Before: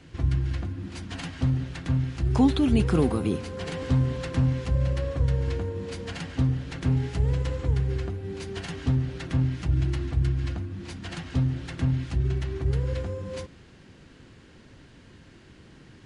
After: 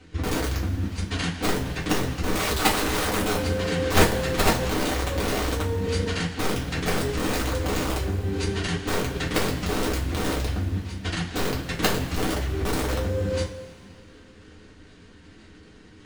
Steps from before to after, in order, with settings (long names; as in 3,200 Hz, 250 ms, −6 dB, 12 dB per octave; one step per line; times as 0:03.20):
wrap-around overflow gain 20.5 dB
output level in coarse steps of 12 dB
coupled-rooms reverb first 0.25 s, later 2.2 s, from −18 dB, DRR −5 dB
level +5 dB